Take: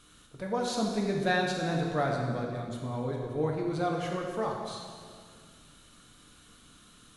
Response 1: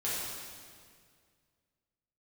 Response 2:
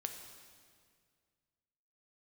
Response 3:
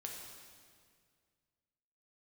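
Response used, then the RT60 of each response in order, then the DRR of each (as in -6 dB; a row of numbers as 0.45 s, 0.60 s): 3; 2.0 s, 2.0 s, 2.0 s; -9.5 dB, 4.5 dB, -0.5 dB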